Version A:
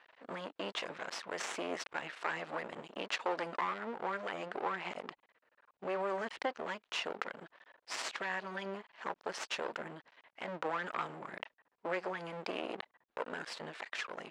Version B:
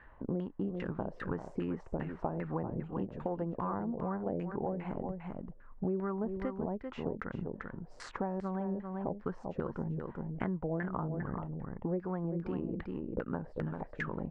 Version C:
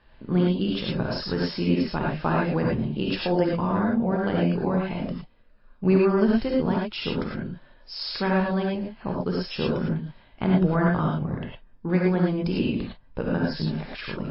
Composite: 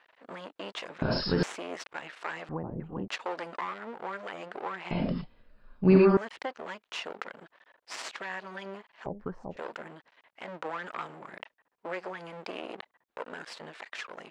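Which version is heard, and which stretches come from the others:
A
1.02–1.43 from C
2.49–3.08 from B
4.91–6.17 from C
9.06–9.57 from B

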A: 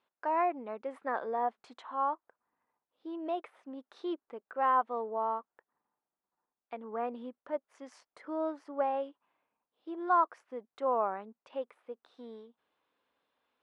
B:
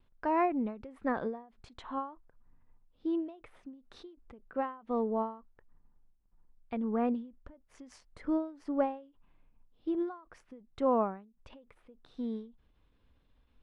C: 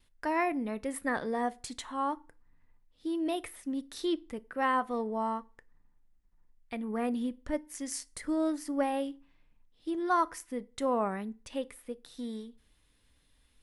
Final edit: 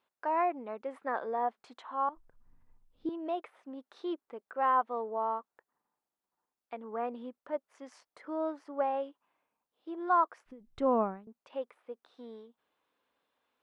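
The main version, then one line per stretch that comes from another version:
A
2.09–3.09 from B
10.46–11.27 from B
not used: C

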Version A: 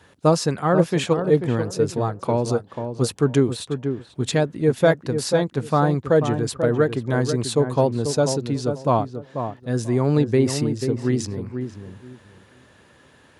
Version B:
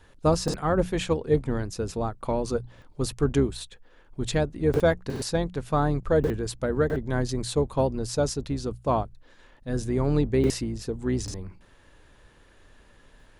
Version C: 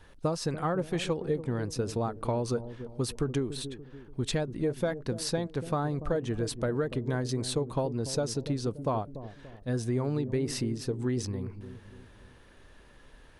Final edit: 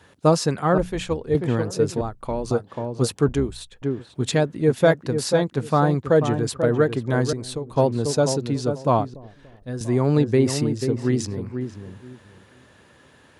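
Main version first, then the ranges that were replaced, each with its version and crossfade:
A
0.78–1.35 from B
2.01–2.51 from B
3.28–3.82 from B
7.33–7.76 from C
9.14–9.81 from C

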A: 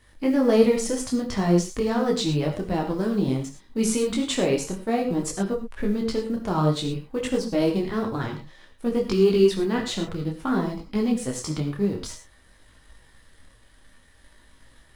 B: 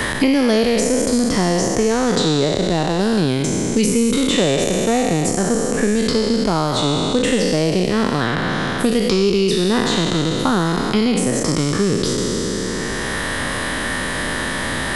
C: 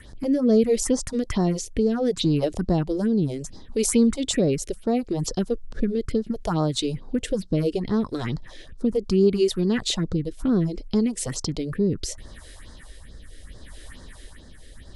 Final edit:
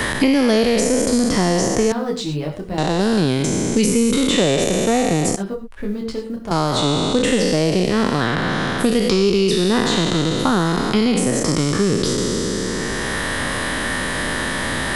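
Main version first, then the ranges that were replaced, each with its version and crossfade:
B
1.92–2.78 from A
5.36–6.51 from A
not used: C

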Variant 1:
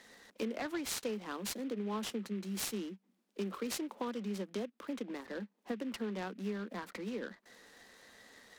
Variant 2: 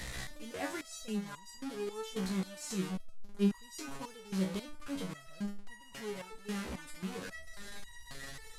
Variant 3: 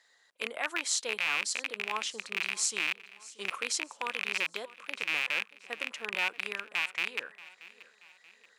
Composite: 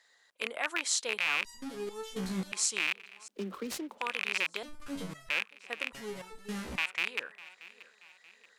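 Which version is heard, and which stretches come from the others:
3
1.45–2.52 from 2
3.28–3.98 from 1
4.63–5.29 from 2
5.93–6.78 from 2

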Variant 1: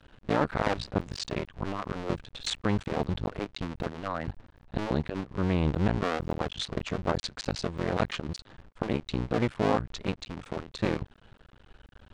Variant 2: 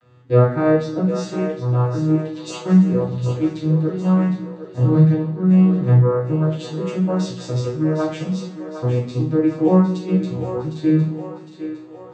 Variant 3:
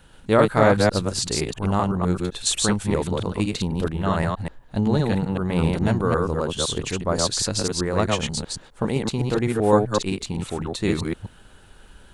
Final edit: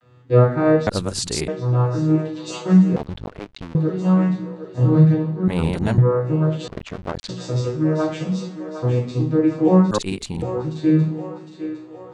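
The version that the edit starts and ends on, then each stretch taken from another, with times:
2
0.87–1.48 from 3
2.96–3.75 from 1
5.48–5.98 from 3
6.68–7.29 from 1
9.91–10.42 from 3

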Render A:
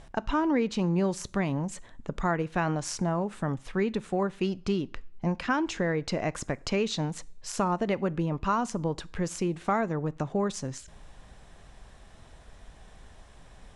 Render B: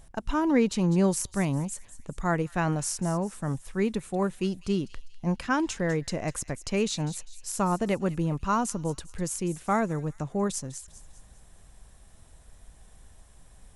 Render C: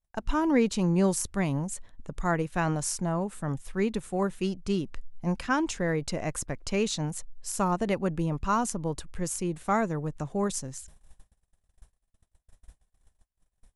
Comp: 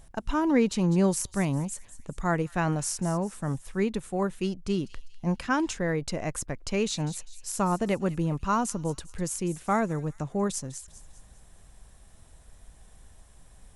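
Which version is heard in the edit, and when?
B
3.84–4.78 from C
5.73–6.91 from C
not used: A

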